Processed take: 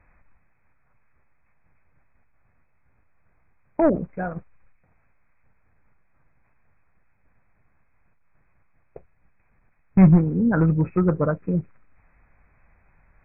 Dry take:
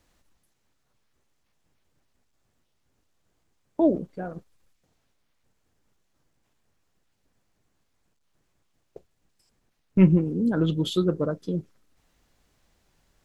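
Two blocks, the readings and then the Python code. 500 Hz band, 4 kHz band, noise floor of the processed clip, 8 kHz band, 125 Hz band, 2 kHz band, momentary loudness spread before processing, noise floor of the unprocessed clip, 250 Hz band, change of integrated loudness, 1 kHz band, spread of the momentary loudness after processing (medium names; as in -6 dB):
+2.5 dB, under -40 dB, -63 dBFS, no reading, +5.5 dB, +8.0 dB, 17 LU, -73 dBFS, +3.5 dB, +3.5 dB, +8.0 dB, 17 LU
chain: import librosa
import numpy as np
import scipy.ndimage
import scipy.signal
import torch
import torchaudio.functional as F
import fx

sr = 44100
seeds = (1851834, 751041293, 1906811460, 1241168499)

p1 = 10.0 ** (-15.0 / 20.0) * (np.abs((x / 10.0 ** (-15.0 / 20.0) + 3.0) % 4.0 - 2.0) - 1.0)
p2 = x + (p1 * 10.0 ** (-5.5 / 20.0))
p3 = fx.env_lowpass_down(p2, sr, base_hz=1700.0, full_db=-15.5)
p4 = fx.brickwall_lowpass(p3, sr, high_hz=2600.0)
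p5 = fx.peak_eq(p4, sr, hz=340.0, db=-10.5, octaves=1.7)
y = p5 * 10.0 ** (7.0 / 20.0)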